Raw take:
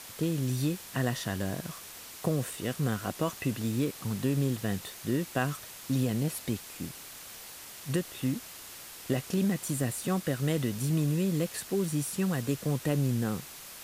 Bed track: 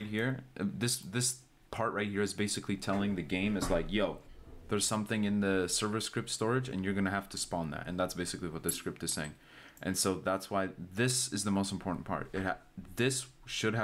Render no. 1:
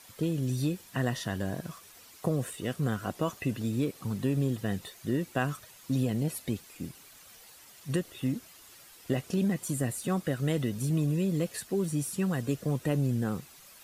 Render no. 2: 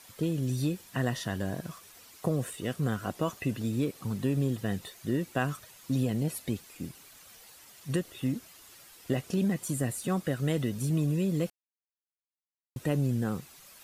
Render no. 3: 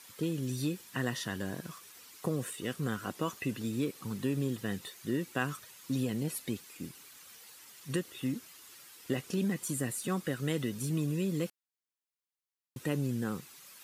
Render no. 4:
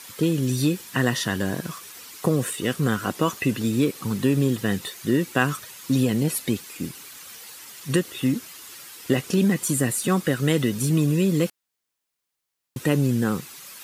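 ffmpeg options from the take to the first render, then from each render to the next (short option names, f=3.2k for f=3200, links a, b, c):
-af "afftdn=nr=10:nf=-46"
-filter_complex "[0:a]asplit=3[a][b][c];[a]atrim=end=11.5,asetpts=PTS-STARTPTS,afade=t=out:st=11.496:d=0.004:c=hsin[d];[b]atrim=start=11.5:end=12.76,asetpts=PTS-STARTPTS,volume=0[e];[c]atrim=start=12.76,asetpts=PTS-STARTPTS,afade=t=in:d=0.004:c=hsin[f];[d][e][f]concat=n=3:v=0:a=1"
-af "highpass=f=230:p=1,equalizer=f=660:w=2.6:g=-8"
-af "volume=11.5dB"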